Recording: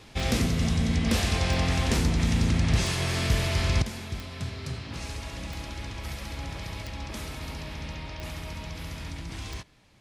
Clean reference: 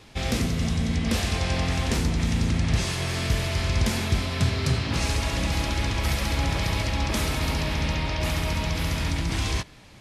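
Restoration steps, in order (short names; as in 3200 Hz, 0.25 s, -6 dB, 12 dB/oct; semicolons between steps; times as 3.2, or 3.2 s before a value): clip repair -14.5 dBFS; de-click; gain 0 dB, from 3.82 s +11 dB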